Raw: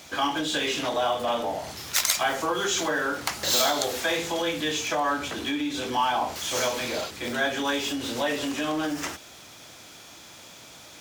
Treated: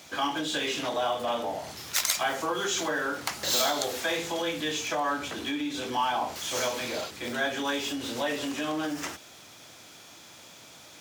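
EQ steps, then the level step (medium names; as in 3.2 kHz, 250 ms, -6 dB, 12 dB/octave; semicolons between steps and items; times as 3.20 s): high-pass 77 Hz; -3.0 dB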